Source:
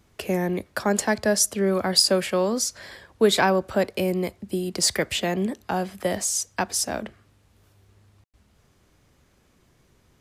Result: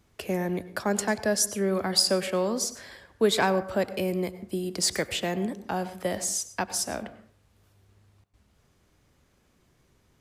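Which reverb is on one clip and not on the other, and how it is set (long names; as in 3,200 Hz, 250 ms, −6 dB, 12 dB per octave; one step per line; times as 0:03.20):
dense smooth reverb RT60 0.54 s, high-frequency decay 0.45×, pre-delay 85 ms, DRR 14 dB
level −4 dB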